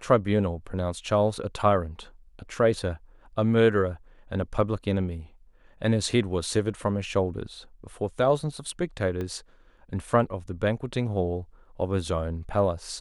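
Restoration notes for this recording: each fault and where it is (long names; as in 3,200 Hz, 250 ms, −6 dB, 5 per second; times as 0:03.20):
0:09.21: click −21 dBFS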